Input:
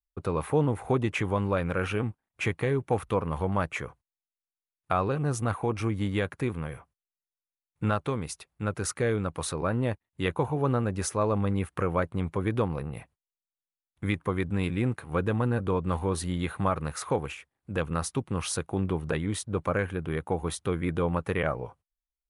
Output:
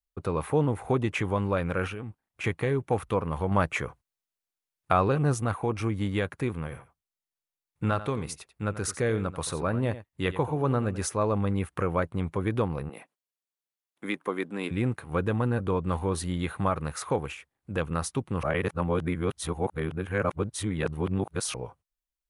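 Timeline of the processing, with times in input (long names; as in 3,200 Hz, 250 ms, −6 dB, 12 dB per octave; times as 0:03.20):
0:01.87–0:02.44: downward compressor, threshold −33 dBFS
0:03.51–0:05.34: clip gain +3.5 dB
0:06.58–0:11.04: single-tap delay 88 ms −14 dB
0:12.89–0:14.71: high-pass filter 230 Hz 24 dB per octave
0:18.43–0:21.54: reverse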